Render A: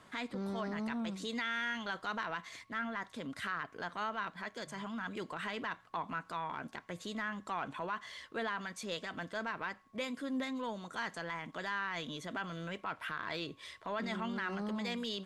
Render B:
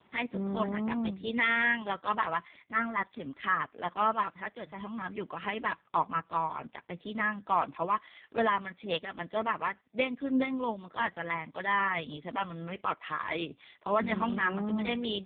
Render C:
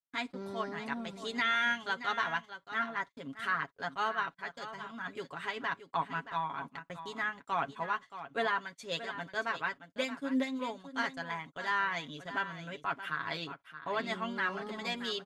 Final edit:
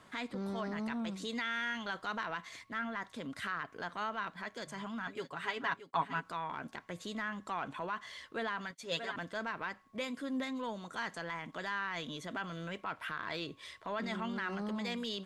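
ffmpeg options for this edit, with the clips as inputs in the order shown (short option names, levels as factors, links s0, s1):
-filter_complex "[2:a]asplit=2[s0][s1];[0:a]asplit=3[s2][s3][s4];[s2]atrim=end=5.072[s5];[s0]atrim=start=5.068:end=6.232[s6];[s3]atrim=start=6.228:end=8.712[s7];[s1]atrim=start=8.708:end=9.162[s8];[s4]atrim=start=9.158[s9];[s5][s6]acrossfade=d=0.004:c1=hsin:c2=hsin[s10];[s10][s7]acrossfade=d=0.004:c1=hsin:c2=hsin[s11];[s11][s8]acrossfade=d=0.004:c1=hsin:c2=hsin[s12];[s12][s9]acrossfade=d=0.004:c1=hsin:c2=hsin"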